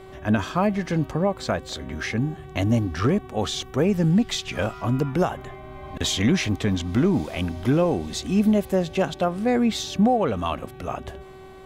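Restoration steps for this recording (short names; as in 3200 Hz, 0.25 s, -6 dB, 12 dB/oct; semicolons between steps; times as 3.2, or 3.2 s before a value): de-hum 379.6 Hz, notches 10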